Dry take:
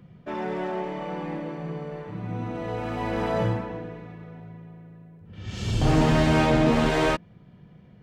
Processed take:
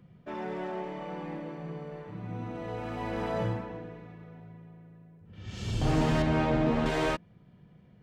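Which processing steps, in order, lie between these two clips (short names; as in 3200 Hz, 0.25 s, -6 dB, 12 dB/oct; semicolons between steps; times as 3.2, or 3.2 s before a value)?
6.22–6.86 LPF 2200 Hz 6 dB/oct; gain -6 dB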